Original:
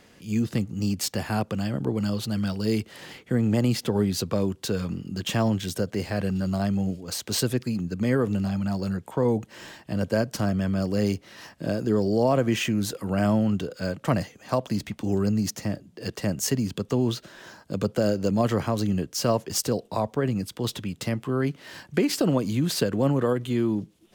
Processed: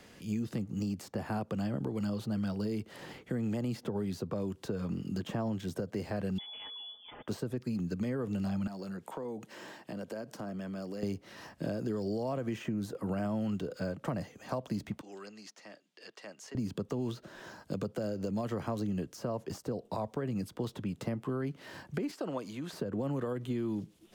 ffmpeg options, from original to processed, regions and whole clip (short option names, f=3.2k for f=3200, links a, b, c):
-filter_complex "[0:a]asettb=1/sr,asplit=3[a][b][c];[a]atrim=end=6.384[d];[b]atrim=start=6.38:end=7.28,asetpts=PTS-STARTPTS,afade=t=in:d=0.004:c=qsin,afade=t=out:st=0.896:d=0.004:c=qsin,aecho=1:1:5.1:0.7,atrim=end_sample=39690,lowpass=f=3.1k:t=q:w=0.5098,lowpass=f=3.1k:t=q:w=0.6013,lowpass=f=3.1k:t=q:w=0.9,lowpass=f=3.1k:t=q:w=2.563,afreqshift=-3600[e];[c]atrim=start=7.276[f];[d][e]acrossfade=d=0.004:c1=hsin:c2=qsin[g];[g][f]acrossfade=d=0.004:c1=qsin:c2=hsin,asettb=1/sr,asplit=3[h][i][j];[h]atrim=end=8.674[k];[i]atrim=start=8.67:end=11.03,asetpts=PTS-STARTPTS,afade=t=in:d=0.004:c=qsin,afade=t=out:st=2.356:d=0.004:c=qsin,highpass=210,acompressor=threshold=-36dB:ratio=5:attack=3.2:release=140:knee=1:detection=peak[l];[j]atrim=start=11.026[m];[k][l]acrossfade=d=0.004:c1=hsin:c2=qsin[n];[n][m]acrossfade=d=0.004:c1=qsin:c2=hsin,asettb=1/sr,asplit=3[o][p][q];[o]atrim=end=15.014[r];[p]atrim=start=15.01:end=16.55,asetpts=PTS-STARTPTS,afade=t=in:d=0.004:c=qsin,afade=t=out:st=1.536:d=0.004:c=qsin,aderivative,acontrast=69,highpass=230,lowpass=3.2k[s];[q]atrim=start=16.546[t];[r][s]acrossfade=d=0.004:c1=hsin:c2=qsin[u];[u][t]acrossfade=d=0.004:c1=qsin:c2=hsin,asettb=1/sr,asplit=3[v][w][x];[v]atrim=end=22.114[y];[w]atrim=start=22.11:end=22.73,asetpts=PTS-STARTPTS,afade=t=in:d=0.004:c=qsin,afade=t=out:st=0.616:d=0.004:c=qsin,highpass=f=1.2k:p=1,highshelf=f=11k:g=-10[z];[x]atrim=start=22.726[aa];[y][z]acrossfade=d=0.004:c1=hsin:c2=qsin[ab];[ab][aa]acrossfade=d=0.004:c1=qsin:c2=hsin,alimiter=limit=-18.5dB:level=0:latency=1:release=250,acrossover=split=120|1400[ac][ad][ae];[ac]acompressor=threshold=-47dB:ratio=4[af];[ad]acompressor=threshold=-31dB:ratio=4[ag];[ae]acompressor=threshold=-52dB:ratio=4[ah];[af][ag][ah]amix=inputs=3:normalize=0,volume=-1dB"